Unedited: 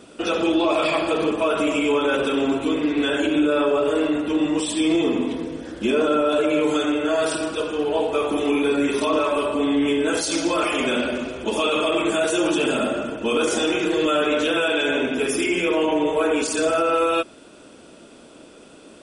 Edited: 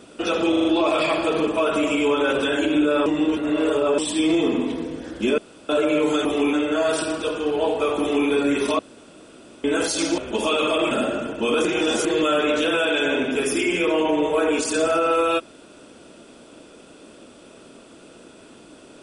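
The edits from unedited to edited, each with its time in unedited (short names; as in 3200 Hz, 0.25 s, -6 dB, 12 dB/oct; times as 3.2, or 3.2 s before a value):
0.49 stutter 0.04 s, 5 plays
2.29–3.06 cut
3.67–4.59 reverse
5.99–6.3 room tone
8.33–8.61 copy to 6.86
9.12–9.97 room tone
10.51–11.31 cut
12.04–12.74 cut
13.48–13.88 reverse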